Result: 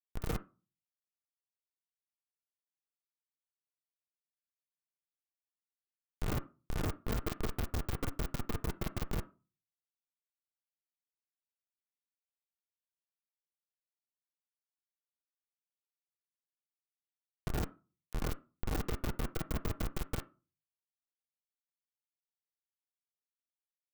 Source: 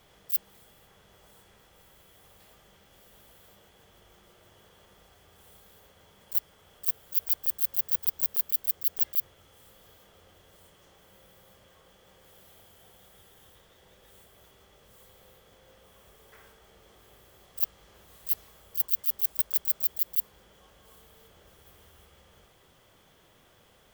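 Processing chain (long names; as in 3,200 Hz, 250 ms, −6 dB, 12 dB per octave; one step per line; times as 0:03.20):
peak hold with a rise ahead of every peak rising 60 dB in 0.88 s
downward compressor 3 to 1, threshold −39 dBFS, peak gain reduction 18 dB
leveller curve on the samples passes 1
comparator with hysteresis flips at −25 dBFS
on a send: loudspeaker in its box 360–2,300 Hz, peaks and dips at 480 Hz −8 dB, 820 Hz −10 dB, 1,300 Hz +8 dB, 2,300 Hz −4 dB + convolution reverb RT60 0.35 s, pre-delay 3 ms, DRR 6 dB
on the sum: level +9.5 dB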